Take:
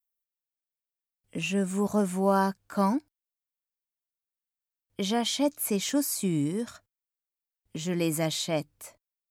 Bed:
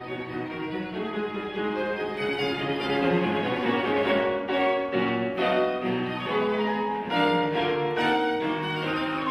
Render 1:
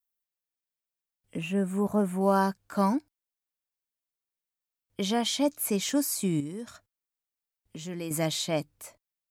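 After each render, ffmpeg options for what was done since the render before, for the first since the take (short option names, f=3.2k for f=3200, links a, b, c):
-filter_complex "[0:a]asettb=1/sr,asplit=3[a][b][c];[a]atrim=end=1.374[d];[b]atrim=start=1.37:end=2.21,asetpts=PTS-STARTPTS,afade=t=in:d=0.004:c=qsin,afade=t=out:st=0.836:d=0.004:c=qsin,equalizer=f=5.3k:t=o:w=1.4:g=-15[e];[c]atrim=start=2.206[f];[d][e]acrossfade=d=0.004:c1=hsin:c2=qsin[g];[g][f]acrossfade=d=0.004:c1=qsin:c2=hsin,asettb=1/sr,asplit=3[h][i][j];[h]atrim=end=6.404[k];[i]atrim=start=6.4:end=8.11,asetpts=PTS-STARTPTS,afade=t=in:d=0.004:c=qsin,afade=t=out:st=1.706:d=0.004:c=qsin,acompressor=threshold=-46dB:ratio=1.5:attack=3.2:release=140:knee=1:detection=peak[l];[j]atrim=start=8.106[m];[k][l]acrossfade=d=0.004:c1=hsin:c2=qsin[n];[n][m]acrossfade=d=0.004:c1=qsin:c2=hsin"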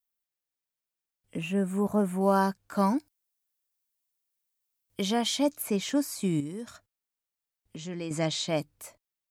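-filter_complex "[0:a]asettb=1/sr,asplit=3[a][b][c];[a]atrim=end=2.964[d];[b]atrim=start=2.96:end=5.02,asetpts=PTS-STARTPTS,afade=t=in:d=0.004:c=qsin,afade=t=out:st=2.056:d=0.004:c=qsin,highshelf=f=4.7k:g=9.5[e];[c]atrim=start=5.016[f];[d][e]acrossfade=d=0.004:c1=hsin:c2=qsin[g];[g][f]acrossfade=d=0.004:c1=qsin:c2=hsin,asettb=1/sr,asplit=3[h][i][j];[h]atrim=end=5.624[k];[i]atrim=start=5.62:end=6.24,asetpts=PTS-STARTPTS,afade=t=in:d=0.004:c=qsin,afade=t=out:st=0.616:d=0.004:c=qsin,highshelf=f=6.3k:g=-10.5[l];[j]atrim=start=6.236[m];[k][l]acrossfade=d=0.004:c1=hsin:c2=qsin[n];[n][m]acrossfade=d=0.004:c1=qsin:c2=hsin,asettb=1/sr,asplit=3[o][p][q];[o]atrim=end=7.764[r];[p]atrim=start=7.76:end=8.48,asetpts=PTS-STARTPTS,afade=t=in:d=0.004:c=qsin,afade=t=out:st=0.716:d=0.004:c=qsin,lowpass=f=7.4k:w=0.5412,lowpass=f=7.4k:w=1.3066[s];[q]atrim=start=8.476[t];[r][s]acrossfade=d=0.004:c1=hsin:c2=qsin[u];[u][t]acrossfade=d=0.004:c1=qsin:c2=hsin"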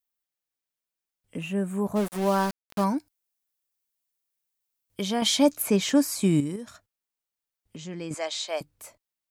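-filter_complex "[0:a]asplit=3[a][b][c];[a]afade=t=out:st=1.95:d=0.02[d];[b]aeval=exprs='val(0)*gte(abs(val(0)),0.0316)':c=same,afade=t=in:st=1.95:d=0.02,afade=t=out:st=2.83:d=0.02[e];[c]afade=t=in:st=2.83:d=0.02[f];[d][e][f]amix=inputs=3:normalize=0,asettb=1/sr,asplit=3[g][h][i];[g]atrim=end=8.144[j];[h]atrim=start=8.14:end=8.61,asetpts=PTS-STARTPTS,afade=t=in:d=0.004:c=qsin,afade=t=out:st=0.466:d=0.004:c=qsin,highpass=f=470:w=0.5412,highpass=f=470:w=1.3066[k];[i]atrim=start=8.606[l];[j][k]acrossfade=d=0.004:c1=hsin:c2=qsin[m];[m][l]acrossfade=d=0.004:c1=qsin:c2=hsin,asplit=3[n][o][p];[n]atrim=end=5.222[q];[o]atrim=start=5.218:end=6.562,asetpts=PTS-STARTPTS,volume=6dB[r];[p]atrim=start=6.558[s];[q][r]acrossfade=d=0.004:c1=hsin:c2=hsin[t];[t][s]acrossfade=d=0.004:c1=hsin:c2=hsin"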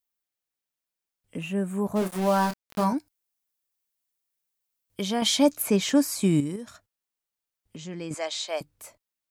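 -filter_complex "[0:a]asettb=1/sr,asplit=3[a][b][c];[a]atrim=end=1.994[d];[b]atrim=start=1.99:end=2.93,asetpts=PTS-STARTPTS,afade=t=in:d=0.004:c=qsin,afade=t=out:st=0.936:d=0.004:c=qsin,asplit=2[e][f];[f]adelay=27,volume=-7dB[g];[e][g]amix=inputs=2:normalize=0,atrim=end_sample=41454[h];[c]atrim=start=2.926[i];[d][h]acrossfade=d=0.004:c1=hsin:c2=qsin[j];[j][i]acrossfade=d=0.004:c1=qsin:c2=hsin"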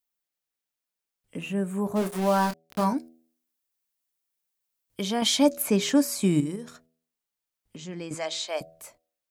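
-af "equalizer=f=79:w=4.4:g=-14.5,bandreject=f=81.38:t=h:w=4,bandreject=f=162.76:t=h:w=4,bandreject=f=244.14:t=h:w=4,bandreject=f=325.52:t=h:w=4,bandreject=f=406.9:t=h:w=4,bandreject=f=488.28:t=h:w=4,bandreject=f=569.66:t=h:w=4,bandreject=f=651.04:t=h:w=4,bandreject=f=732.42:t=h:w=4"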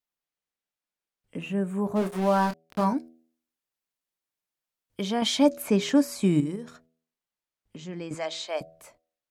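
-af "aemphasis=mode=reproduction:type=cd"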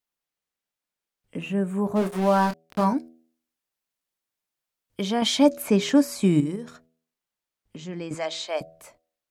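-af "volume=2.5dB"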